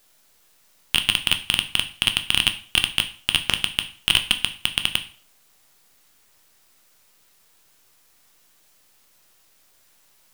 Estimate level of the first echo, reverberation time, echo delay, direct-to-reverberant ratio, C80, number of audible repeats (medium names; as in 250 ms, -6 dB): no echo, 0.45 s, no echo, 7.0 dB, 18.0 dB, no echo